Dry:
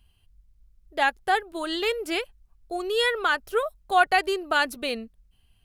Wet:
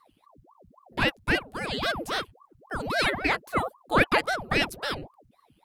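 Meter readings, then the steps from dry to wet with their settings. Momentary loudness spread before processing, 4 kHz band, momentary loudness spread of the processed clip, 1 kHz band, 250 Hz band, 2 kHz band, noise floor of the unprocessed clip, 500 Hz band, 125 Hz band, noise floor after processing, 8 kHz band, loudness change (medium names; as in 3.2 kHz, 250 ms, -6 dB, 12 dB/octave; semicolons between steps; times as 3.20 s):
11 LU, -1.5 dB, 11 LU, -4.5 dB, +2.5 dB, -1.0 dB, -64 dBFS, -3.5 dB, no reading, -66 dBFS, -1.0 dB, -1.5 dB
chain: ring modulator with a swept carrier 610 Hz, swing 90%, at 3.7 Hz; trim +1 dB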